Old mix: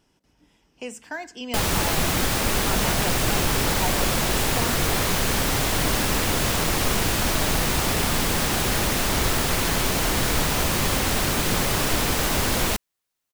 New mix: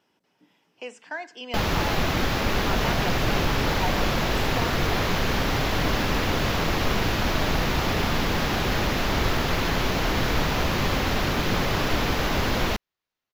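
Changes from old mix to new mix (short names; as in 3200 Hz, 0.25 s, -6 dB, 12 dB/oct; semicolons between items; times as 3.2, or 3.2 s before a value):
speech: add BPF 410–4200 Hz; second sound: add running mean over 5 samples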